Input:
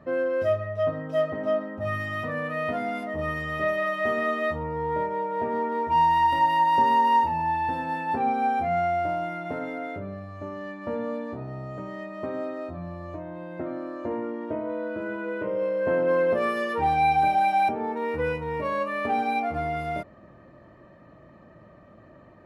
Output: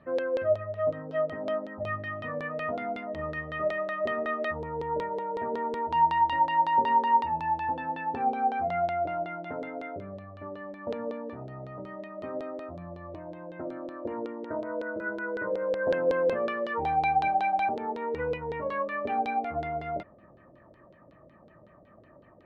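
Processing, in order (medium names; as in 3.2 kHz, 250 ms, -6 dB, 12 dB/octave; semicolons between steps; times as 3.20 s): 14.46–15.94 s: resonant high shelf 2.4 kHz -12.5 dB, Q 3; LFO low-pass saw down 5.4 Hz 410–3900 Hz; trim -6.5 dB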